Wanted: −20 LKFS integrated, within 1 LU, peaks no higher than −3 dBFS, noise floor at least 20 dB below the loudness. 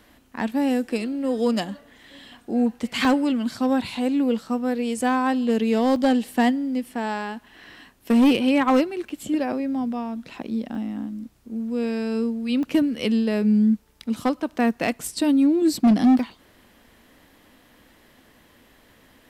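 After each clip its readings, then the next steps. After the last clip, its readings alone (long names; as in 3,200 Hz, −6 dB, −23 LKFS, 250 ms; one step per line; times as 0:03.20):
share of clipped samples 0.7%; peaks flattened at −12.5 dBFS; number of dropouts 6; longest dropout 1.1 ms; integrated loudness −22.5 LKFS; sample peak −12.5 dBFS; target loudness −20.0 LKFS
→ clipped peaks rebuilt −12.5 dBFS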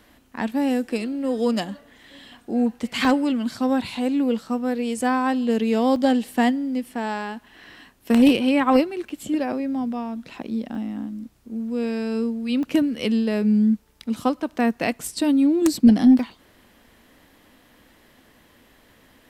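share of clipped samples 0.0%; number of dropouts 6; longest dropout 1.1 ms
→ repair the gap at 0:03.05/0:05.96/0:09.09/0:10.75/0:12.63/0:16.19, 1.1 ms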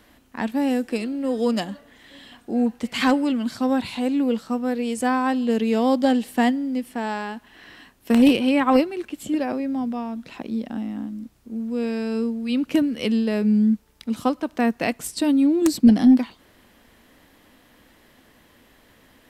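number of dropouts 0; integrated loudness −22.0 LKFS; sample peak −3.5 dBFS; target loudness −20.0 LKFS
→ level +2 dB
brickwall limiter −3 dBFS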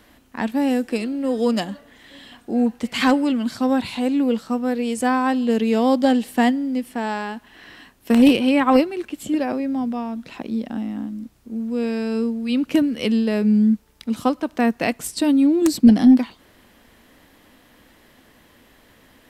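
integrated loudness −20.0 LKFS; sample peak −3.0 dBFS; background noise floor −54 dBFS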